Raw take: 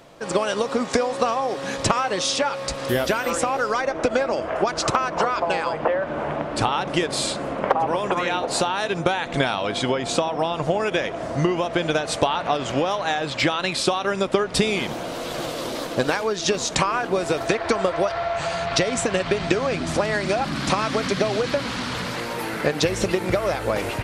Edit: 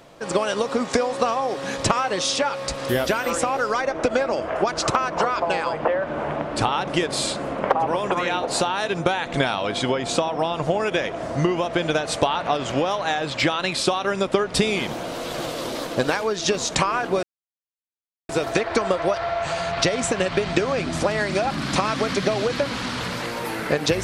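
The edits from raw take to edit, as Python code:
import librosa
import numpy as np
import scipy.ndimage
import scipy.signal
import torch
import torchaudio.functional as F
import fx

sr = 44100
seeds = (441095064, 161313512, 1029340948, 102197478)

y = fx.edit(x, sr, fx.insert_silence(at_s=17.23, length_s=1.06), tone=tone)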